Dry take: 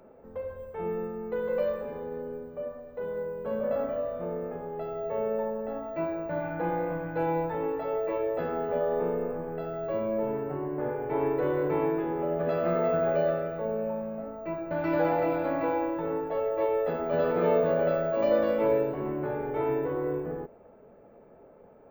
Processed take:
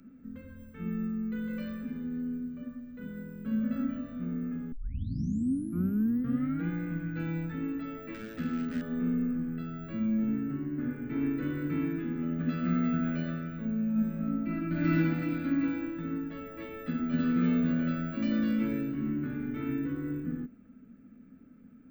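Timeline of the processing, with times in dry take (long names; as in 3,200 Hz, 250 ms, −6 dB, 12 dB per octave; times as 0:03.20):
0:04.72: tape start 1.97 s
0:08.14–0:08.82: gain into a clipping stage and back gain 26 dB
0:13.91–0:14.92: thrown reverb, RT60 0.98 s, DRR −5 dB
whole clip: drawn EQ curve 140 Hz 0 dB, 260 Hz +13 dB, 370 Hz −14 dB, 580 Hz −22 dB, 930 Hz −25 dB, 1,300 Hz −4 dB, 6,500 Hz +3 dB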